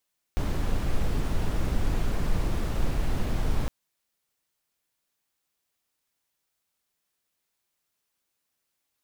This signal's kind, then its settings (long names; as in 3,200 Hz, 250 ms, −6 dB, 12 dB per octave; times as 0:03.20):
noise brown, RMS −24 dBFS 3.31 s